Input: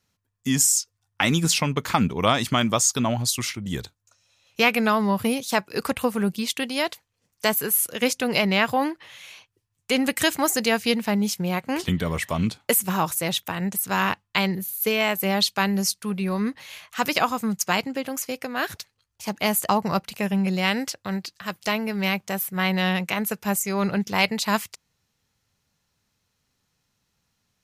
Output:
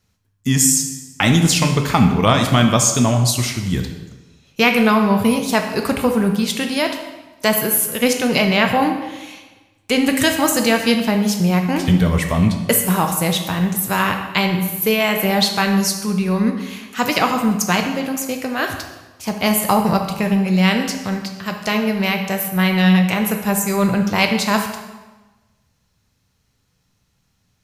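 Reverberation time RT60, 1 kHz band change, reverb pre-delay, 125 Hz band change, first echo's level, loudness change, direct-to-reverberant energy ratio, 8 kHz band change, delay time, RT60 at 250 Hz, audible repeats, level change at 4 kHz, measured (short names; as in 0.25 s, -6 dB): 1.2 s, +5.5 dB, 7 ms, +10.0 dB, none, +6.0 dB, 4.0 dB, +4.5 dB, none, 1.2 s, none, +4.5 dB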